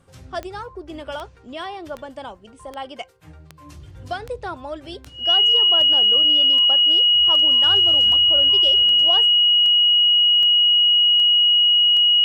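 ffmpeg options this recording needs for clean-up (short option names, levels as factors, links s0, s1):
-af "adeclick=t=4,bandreject=f=2900:w=30"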